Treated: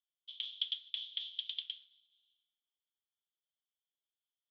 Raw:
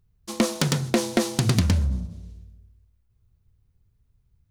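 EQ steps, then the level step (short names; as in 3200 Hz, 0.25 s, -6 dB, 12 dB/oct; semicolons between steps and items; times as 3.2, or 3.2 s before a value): Butterworth band-pass 3300 Hz, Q 7.5; air absorption 200 m; +6.5 dB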